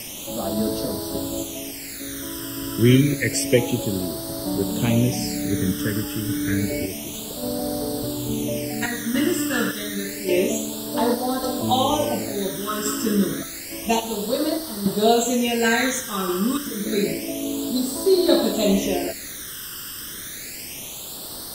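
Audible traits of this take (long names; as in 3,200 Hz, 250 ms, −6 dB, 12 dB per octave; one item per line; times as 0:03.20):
sample-and-hold tremolo, depth 80%
a quantiser's noise floor 6 bits, dither triangular
phaser sweep stages 12, 0.29 Hz, lowest notch 720–2,400 Hz
Ogg Vorbis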